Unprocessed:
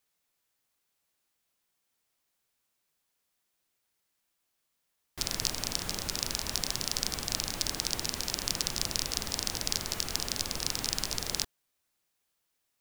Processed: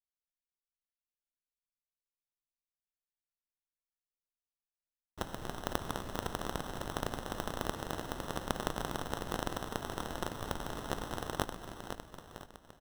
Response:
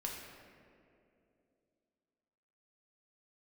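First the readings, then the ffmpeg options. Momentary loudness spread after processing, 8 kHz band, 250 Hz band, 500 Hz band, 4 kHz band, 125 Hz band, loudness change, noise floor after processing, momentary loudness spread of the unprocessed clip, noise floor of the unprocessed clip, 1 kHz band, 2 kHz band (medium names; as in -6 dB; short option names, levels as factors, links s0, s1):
9 LU, -16.0 dB, +2.0 dB, +4.0 dB, -14.0 dB, 0.0 dB, -8.0 dB, under -85 dBFS, 2 LU, -80 dBFS, +4.5 dB, -3.0 dB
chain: -af "anlmdn=0.251,aecho=1:1:507|1014|1521|2028|2535|3042:0.631|0.29|0.134|0.0614|0.0283|0.013,acrusher=samples=19:mix=1:aa=0.000001,volume=0.473"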